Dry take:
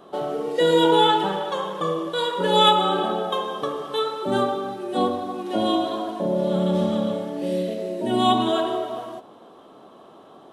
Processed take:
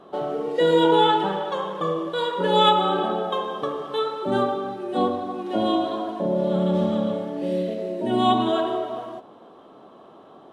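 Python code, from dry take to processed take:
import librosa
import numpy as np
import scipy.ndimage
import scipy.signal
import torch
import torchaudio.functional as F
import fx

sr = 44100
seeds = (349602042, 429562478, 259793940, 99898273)

y = fx.lowpass(x, sr, hz=3100.0, slope=6)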